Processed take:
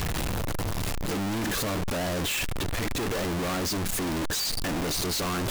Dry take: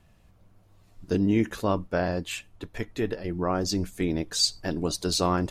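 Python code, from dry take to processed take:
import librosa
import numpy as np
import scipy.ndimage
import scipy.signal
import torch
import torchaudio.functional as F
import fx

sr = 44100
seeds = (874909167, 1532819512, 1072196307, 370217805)

y = np.sign(x) * np.sqrt(np.mean(np.square(x)))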